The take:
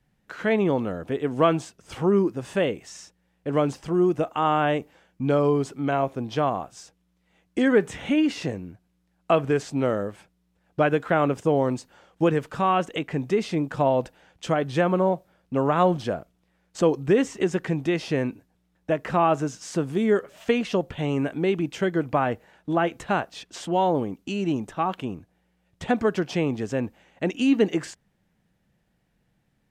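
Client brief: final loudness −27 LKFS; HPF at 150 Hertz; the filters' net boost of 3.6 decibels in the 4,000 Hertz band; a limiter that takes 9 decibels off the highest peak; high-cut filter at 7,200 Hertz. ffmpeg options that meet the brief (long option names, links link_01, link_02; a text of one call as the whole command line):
ffmpeg -i in.wav -af "highpass=150,lowpass=7200,equalizer=frequency=4000:width_type=o:gain=5.5,volume=0.5dB,alimiter=limit=-14.5dB:level=0:latency=1" out.wav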